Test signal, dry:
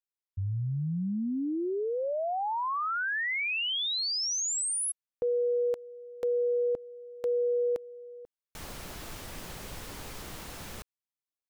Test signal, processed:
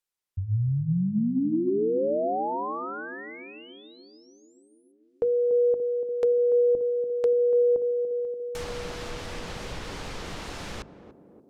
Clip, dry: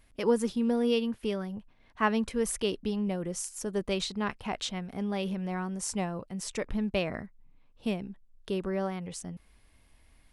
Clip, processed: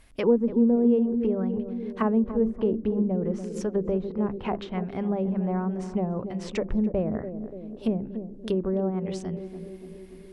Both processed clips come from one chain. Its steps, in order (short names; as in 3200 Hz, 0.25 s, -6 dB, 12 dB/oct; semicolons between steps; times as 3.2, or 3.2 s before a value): notches 50/100/150/200/250/300/350 Hz; treble ducked by the level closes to 520 Hz, closed at -28 dBFS; narrowing echo 0.289 s, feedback 73%, band-pass 310 Hz, level -8 dB; gain +6.5 dB